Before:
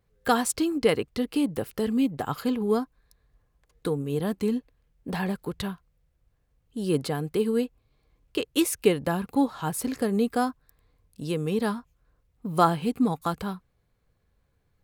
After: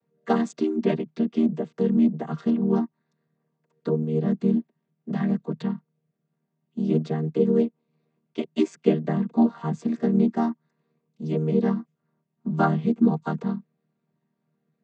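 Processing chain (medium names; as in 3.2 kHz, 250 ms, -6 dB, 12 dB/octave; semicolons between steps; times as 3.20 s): vocoder on a held chord major triad, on D#3; trim +4 dB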